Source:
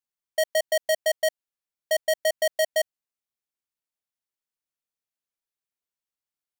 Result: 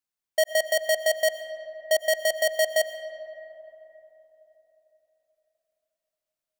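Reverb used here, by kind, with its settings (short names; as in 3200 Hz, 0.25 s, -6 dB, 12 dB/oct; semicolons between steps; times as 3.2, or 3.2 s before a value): digital reverb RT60 3.9 s, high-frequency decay 0.4×, pre-delay 70 ms, DRR 11 dB; gain +1.5 dB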